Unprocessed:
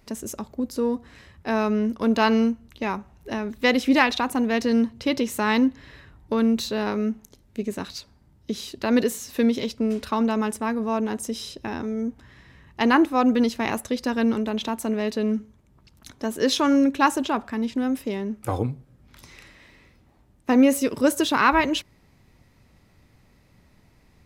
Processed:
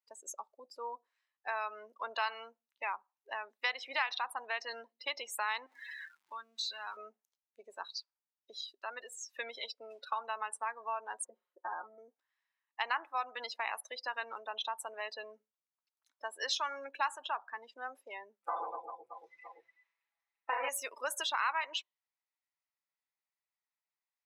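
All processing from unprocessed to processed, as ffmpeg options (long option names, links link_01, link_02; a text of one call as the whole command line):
ffmpeg -i in.wav -filter_complex "[0:a]asettb=1/sr,asplit=3[link_01][link_02][link_03];[link_01]atrim=end=5.664[link_04];[link_02]atrim=start=5.66:end=6.97,asetpts=PTS-STARTPTS,afade=type=in:duration=0.004:curve=qsin,afade=type=out:start_time=1.306:duration=0.004:curve=qsin,aeval=exprs='val(0)+0.5*0.0282*sgn(val(0))':channel_layout=same,equalizer=frequency=470:width_type=o:width=1.3:gain=-12.5,acompressor=threshold=-28dB:ratio=4:attack=3.2:release=140:knee=1:detection=peak[link_05];[link_03]atrim=start=6.966[link_06];[link_04][link_05]acrossfade=duration=0.004:curve1=hsin:curve2=qsin[link_07];[link_07][link_06]acrossfade=duration=0.004:curve1=qsin:curve2=hsin,asettb=1/sr,asplit=3[link_08][link_09][link_10];[link_08]atrim=end=8.664[link_11];[link_09]atrim=start=8.66:end=9.18,asetpts=PTS-STARTPTS,afade=type=in:duration=0.004:curve=qsin,afade=type=out:start_time=0.516:duration=0.004:curve=qsin,agate=range=-33dB:threshold=-40dB:ratio=3:release=100:detection=peak,equalizer=frequency=1300:width=7.6:gain=5.5,acompressor=threshold=-37dB:ratio=1.5:attack=3.2:release=140:knee=1:detection=peak[link_12];[link_10]atrim=start=9.176[link_13];[link_11][link_12]acrossfade=duration=0.004:curve1=hsin:curve2=qsin[link_14];[link_14][link_13]acrossfade=duration=0.004:curve1=qsin:curve2=hsin,asettb=1/sr,asplit=3[link_15][link_16][link_17];[link_15]atrim=end=11.244[link_18];[link_16]atrim=start=11.24:end=11.98,asetpts=PTS-STARTPTS,afade=type=in:duration=0.004:curve=qsin,afade=type=out:start_time=0.736:duration=0.004:curve=qsin,lowpass=frequency=1500:width=0.5412,lowpass=frequency=1500:width=1.3066,aecho=1:1:5.6:0.99,atrim=end_sample=32634[link_19];[link_17]atrim=start=11.976[link_20];[link_18][link_19]acrossfade=duration=0.004:curve1=hsin:curve2=qsin[link_21];[link_21][link_20]acrossfade=duration=0.004:curve1=qsin:curve2=hsin,asettb=1/sr,asplit=3[link_22][link_23][link_24];[link_22]atrim=end=18.404[link_25];[link_23]atrim=start=18.4:end=20.69,asetpts=PTS-STARTPTS,afade=type=in:duration=0.004:curve=qsin,afade=type=out:start_time=2.286:duration=0.004:curve=qsin,aemphasis=mode=reproduction:type=75kf,aecho=1:1:6:0.91,atrim=end_sample=100989,aecho=1:1:30|75|142.5|243.8|395.6|623.4|965.2:0.794|0.631|0.501|0.398|0.316|0.251|0.2,atrim=end_sample=100989[link_26];[link_24]atrim=start=20.686[link_27];[link_25][link_26]acrossfade=duration=0.004:curve1=hsin:curve2=qsin[link_28];[link_28][link_27]acrossfade=duration=0.004:curve1=qsin:curve2=hsin,afftdn=noise_reduction=31:noise_floor=-33,highpass=frequency=810:width=0.5412,highpass=frequency=810:width=1.3066,acompressor=threshold=-33dB:ratio=2.5,volume=-1.5dB" out.wav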